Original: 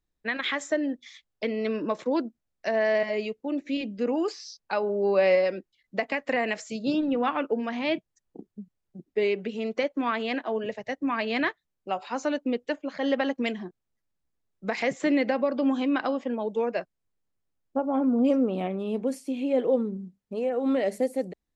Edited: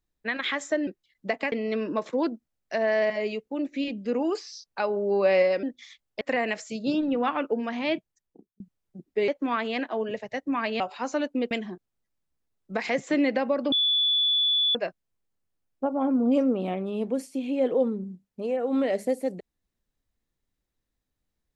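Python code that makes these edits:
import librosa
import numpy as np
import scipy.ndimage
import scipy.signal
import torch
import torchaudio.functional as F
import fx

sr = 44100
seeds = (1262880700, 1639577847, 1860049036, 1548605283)

y = fx.edit(x, sr, fx.swap(start_s=0.87, length_s=0.58, other_s=5.56, other_length_s=0.65),
    fx.fade_out_span(start_s=7.94, length_s=0.66),
    fx.cut(start_s=9.28, length_s=0.55),
    fx.cut(start_s=11.35, length_s=0.56),
    fx.cut(start_s=12.62, length_s=0.82),
    fx.bleep(start_s=15.65, length_s=1.03, hz=3450.0, db=-20.0), tone=tone)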